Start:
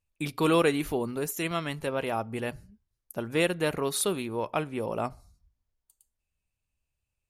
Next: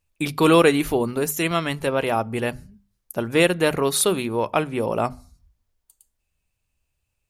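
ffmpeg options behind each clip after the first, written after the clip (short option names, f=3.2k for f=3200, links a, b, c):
-af "bandreject=f=50:t=h:w=6,bandreject=f=100:t=h:w=6,bandreject=f=150:t=h:w=6,bandreject=f=200:t=h:w=6,bandreject=f=250:t=h:w=6,volume=8dB"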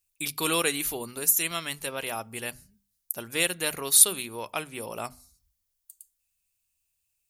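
-af "crystalizer=i=9:c=0,volume=-15.5dB"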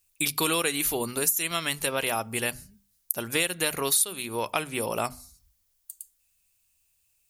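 -af "acompressor=threshold=-30dB:ratio=5,volume=7.5dB"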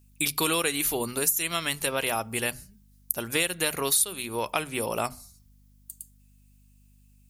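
-af "aeval=exprs='val(0)+0.00141*(sin(2*PI*50*n/s)+sin(2*PI*2*50*n/s)/2+sin(2*PI*3*50*n/s)/3+sin(2*PI*4*50*n/s)/4+sin(2*PI*5*50*n/s)/5)':c=same"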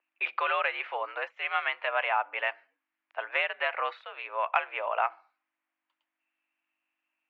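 -af "highpass=f=590:t=q:w=0.5412,highpass=f=590:t=q:w=1.307,lowpass=f=2.4k:t=q:w=0.5176,lowpass=f=2.4k:t=q:w=0.7071,lowpass=f=2.4k:t=q:w=1.932,afreqshift=74,acontrast=24,volume=-1.5dB"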